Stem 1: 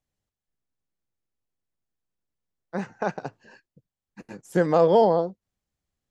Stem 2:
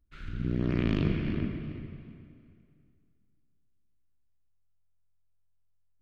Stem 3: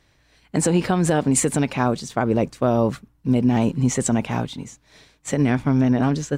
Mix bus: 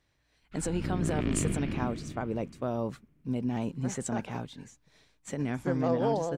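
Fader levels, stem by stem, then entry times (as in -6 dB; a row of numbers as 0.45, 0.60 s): -11.0, -3.0, -13.0 dB; 1.10, 0.40, 0.00 s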